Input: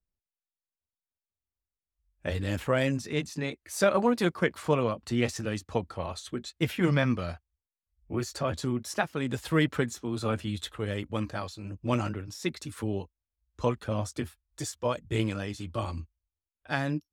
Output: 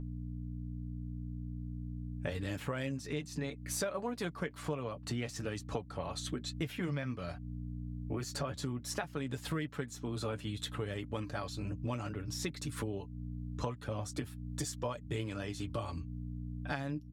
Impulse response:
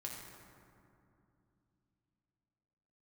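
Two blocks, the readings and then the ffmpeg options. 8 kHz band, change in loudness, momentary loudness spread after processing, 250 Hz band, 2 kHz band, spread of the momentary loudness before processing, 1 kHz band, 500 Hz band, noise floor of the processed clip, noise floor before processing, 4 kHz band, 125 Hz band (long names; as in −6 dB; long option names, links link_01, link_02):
−3.0 dB, −9.0 dB, 5 LU, −8.5 dB, −9.5 dB, 11 LU, −9.0 dB, −10.0 dB, −49 dBFS, below −85 dBFS, −5.5 dB, −6.0 dB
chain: -af "aeval=exprs='val(0)+0.00794*(sin(2*PI*60*n/s)+sin(2*PI*2*60*n/s)/2+sin(2*PI*3*60*n/s)/3+sin(2*PI*4*60*n/s)/4+sin(2*PI*5*60*n/s)/5)':channel_layout=same,aecho=1:1:7:0.4,acompressor=threshold=-39dB:ratio=6,volume=4dB"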